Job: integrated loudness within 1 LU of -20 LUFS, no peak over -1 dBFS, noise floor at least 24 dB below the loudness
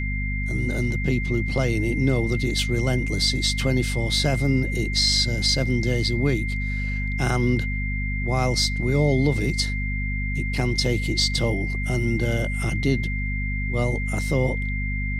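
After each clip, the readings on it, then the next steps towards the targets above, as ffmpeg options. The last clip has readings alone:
hum 50 Hz; highest harmonic 250 Hz; hum level -24 dBFS; steady tone 2.1 kHz; tone level -30 dBFS; loudness -23.0 LUFS; peak level -7.5 dBFS; loudness target -20.0 LUFS
-> -af "bandreject=f=50:t=h:w=4,bandreject=f=100:t=h:w=4,bandreject=f=150:t=h:w=4,bandreject=f=200:t=h:w=4,bandreject=f=250:t=h:w=4"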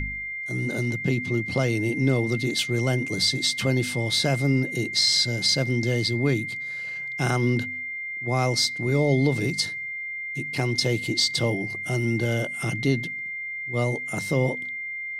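hum not found; steady tone 2.1 kHz; tone level -30 dBFS
-> -af "bandreject=f=2100:w=30"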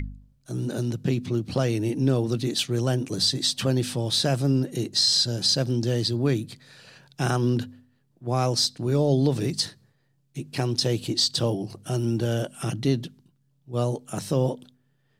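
steady tone not found; loudness -25.0 LUFS; peak level -10.0 dBFS; loudness target -20.0 LUFS
-> -af "volume=1.78"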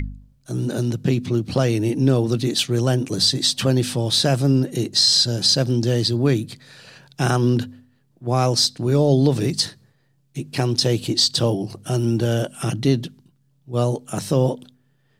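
loudness -20.0 LUFS; peak level -5.0 dBFS; noise floor -62 dBFS

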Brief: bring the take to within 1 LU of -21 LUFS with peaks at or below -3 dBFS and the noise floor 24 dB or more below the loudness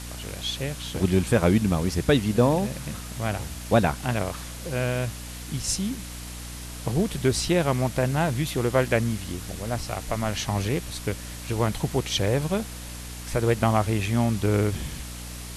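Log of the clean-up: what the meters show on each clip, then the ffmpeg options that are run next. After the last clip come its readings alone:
hum 60 Hz; highest harmonic 300 Hz; hum level -37 dBFS; noise floor -37 dBFS; noise floor target -50 dBFS; loudness -25.5 LUFS; peak level -7.5 dBFS; loudness target -21.0 LUFS
-> -af "bandreject=f=60:t=h:w=6,bandreject=f=120:t=h:w=6,bandreject=f=180:t=h:w=6,bandreject=f=240:t=h:w=6,bandreject=f=300:t=h:w=6"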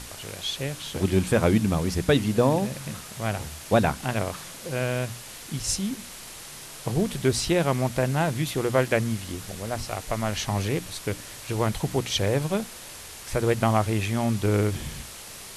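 hum not found; noise floor -42 dBFS; noise floor target -50 dBFS
-> -af "afftdn=nr=8:nf=-42"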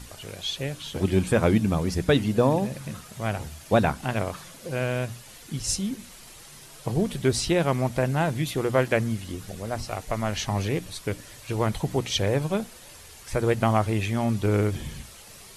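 noise floor -47 dBFS; noise floor target -50 dBFS
-> -af "afftdn=nr=6:nf=-47"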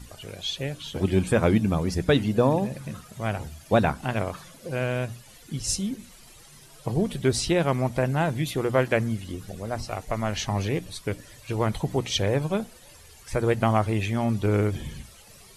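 noise floor -50 dBFS; loudness -26.0 LUFS; peak level -8.5 dBFS; loudness target -21.0 LUFS
-> -af "volume=1.78"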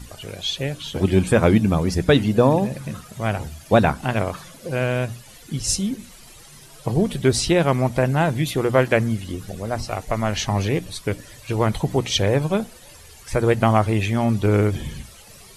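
loudness -21.0 LUFS; peak level -3.5 dBFS; noise floor -45 dBFS

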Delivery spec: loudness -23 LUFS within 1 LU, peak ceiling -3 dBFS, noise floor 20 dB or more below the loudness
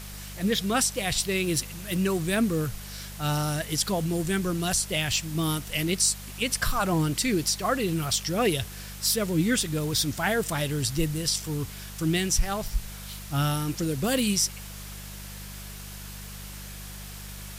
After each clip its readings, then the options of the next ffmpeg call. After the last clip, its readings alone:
hum 50 Hz; highest harmonic 200 Hz; hum level -39 dBFS; noise floor -40 dBFS; noise floor target -47 dBFS; loudness -26.5 LUFS; peak level -11.5 dBFS; loudness target -23.0 LUFS
-> -af "bandreject=f=50:t=h:w=4,bandreject=f=100:t=h:w=4,bandreject=f=150:t=h:w=4,bandreject=f=200:t=h:w=4"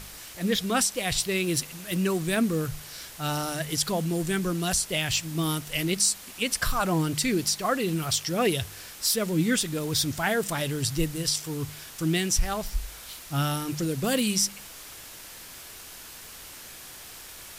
hum not found; noise floor -44 dBFS; noise floor target -47 dBFS
-> -af "afftdn=nr=6:nf=-44"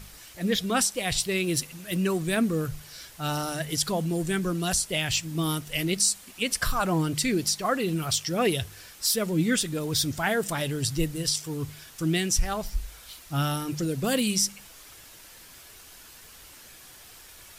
noise floor -49 dBFS; loudness -27.0 LUFS; peak level -11.5 dBFS; loudness target -23.0 LUFS
-> -af "volume=1.58"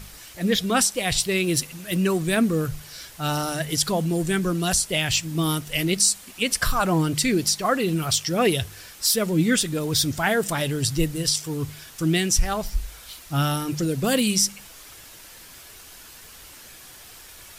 loudness -23.0 LUFS; peak level -7.5 dBFS; noise floor -45 dBFS

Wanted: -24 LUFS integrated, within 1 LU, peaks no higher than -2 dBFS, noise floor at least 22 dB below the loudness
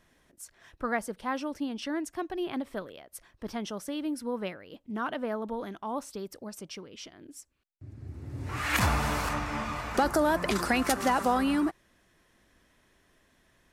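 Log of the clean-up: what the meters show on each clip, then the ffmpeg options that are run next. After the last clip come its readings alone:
loudness -31.0 LUFS; peak level -14.5 dBFS; loudness target -24.0 LUFS
-> -af "volume=2.24"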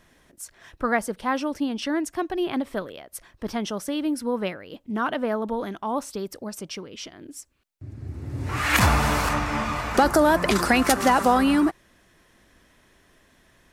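loudness -24.0 LUFS; peak level -7.5 dBFS; noise floor -60 dBFS

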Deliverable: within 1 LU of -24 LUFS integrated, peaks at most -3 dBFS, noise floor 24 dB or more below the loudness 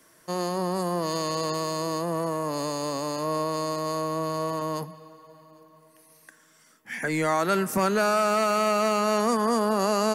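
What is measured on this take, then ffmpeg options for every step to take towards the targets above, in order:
loudness -26.0 LUFS; peak level -13.0 dBFS; loudness target -24.0 LUFS
-> -af "volume=1.26"

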